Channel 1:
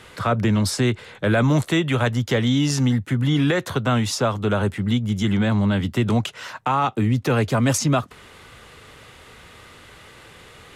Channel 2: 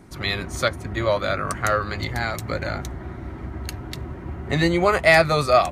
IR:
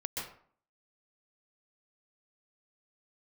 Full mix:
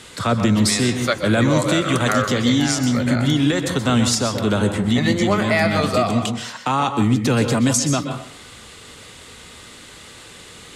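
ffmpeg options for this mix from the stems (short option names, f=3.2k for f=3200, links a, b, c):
-filter_complex "[0:a]equalizer=f=250:t=o:w=1:g=6,equalizer=f=4k:t=o:w=1:g=6,equalizer=f=8k:t=o:w=1:g=12,volume=-3.5dB,asplit=2[a][b];[b]volume=-4.5dB[c];[1:a]highpass=150,adelay=450,volume=0.5dB,asplit=2[d][e];[e]volume=-6.5dB[f];[2:a]atrim=start_sample=2205[g];[c][f]amix=inputs=2:normalize=0[h];[h][g]afir=irnorm=-1:irlink=0[i];[a][d][i]amix=inputs=3:normalize=0,alimiter=limit=-7dB:level=0:latency=1:release=498"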